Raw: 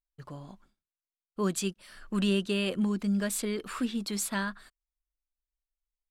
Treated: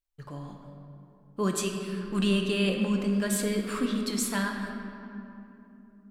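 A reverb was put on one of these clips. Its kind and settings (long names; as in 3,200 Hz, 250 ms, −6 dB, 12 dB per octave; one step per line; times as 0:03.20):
rectangular room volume 130 cubic metres, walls hard, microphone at 0.33 metres
level +1 dB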